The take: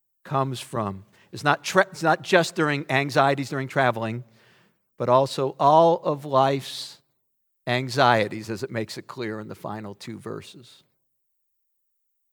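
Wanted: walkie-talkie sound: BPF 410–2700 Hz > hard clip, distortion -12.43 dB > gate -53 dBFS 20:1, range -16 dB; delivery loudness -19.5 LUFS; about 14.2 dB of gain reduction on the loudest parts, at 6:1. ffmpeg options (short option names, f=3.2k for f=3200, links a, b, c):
-af "acompressor=threshold=-28dB:ratio=6,highpass=410,lowpass=2.7k,asoftclip=type=hard:threshold=-27.5dB,agate=range=-16dB:threshold=-53dB:ratio=20,volume=18dB"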